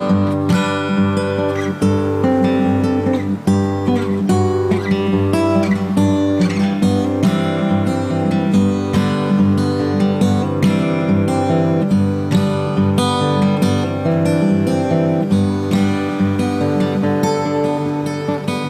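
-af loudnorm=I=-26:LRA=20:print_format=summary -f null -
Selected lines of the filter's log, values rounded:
Input Integrated:    -16.5 LUFS
Input True Peak:      -3.8 dBTP
Input LRA:             1.9 LU
Input Threshold:     -26.5 LUFS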